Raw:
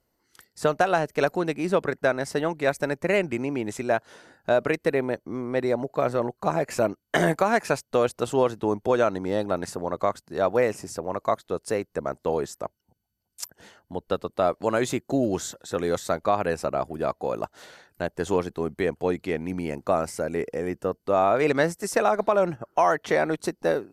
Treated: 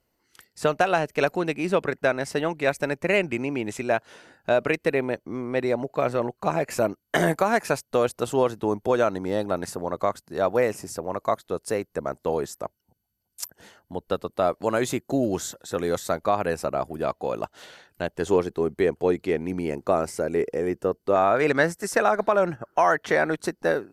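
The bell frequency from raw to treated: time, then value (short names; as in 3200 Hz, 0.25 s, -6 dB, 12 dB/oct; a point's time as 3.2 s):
bell +5.5 dB 0.57 oct
2600 Hz
from 6.7 s 12000 Hz
from 17.03 s 3000 Hz
from 18.22 s 390 Hz
from 21.16 s 1600 Hz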